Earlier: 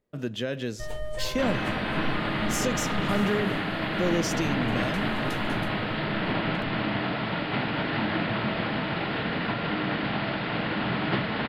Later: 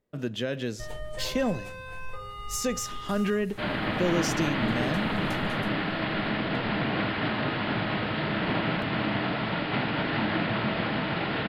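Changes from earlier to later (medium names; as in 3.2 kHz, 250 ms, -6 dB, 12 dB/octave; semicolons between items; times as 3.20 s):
second sound: entry +2.20 s; reverb: off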